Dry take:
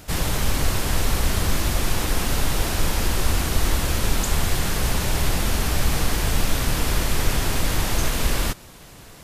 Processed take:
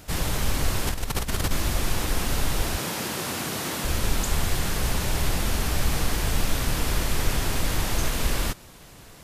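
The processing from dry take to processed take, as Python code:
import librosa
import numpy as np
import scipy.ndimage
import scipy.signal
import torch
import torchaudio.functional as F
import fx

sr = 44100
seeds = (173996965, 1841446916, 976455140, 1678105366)

y = fx.over_compress(x, sr, threshold_db=-22.0, ratio=-0.5, at=(0.87, 1.51))
y = fx.highpass(y, sr, hz=130.0, slope=24, at=(2.78, 3.85))
y = y * librosa.db_to_amplitude(-3.0)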